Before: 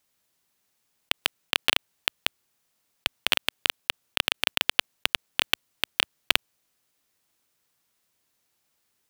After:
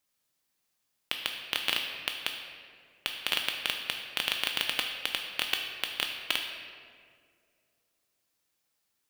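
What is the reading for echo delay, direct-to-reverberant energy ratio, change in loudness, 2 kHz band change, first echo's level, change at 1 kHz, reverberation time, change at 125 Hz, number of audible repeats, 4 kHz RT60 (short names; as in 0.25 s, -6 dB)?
none, 2.5 dB, -4.5 dB, -4.5 dB, none, -5.5 dB, 2.2 s, -6.0 dB, none, 1.2 s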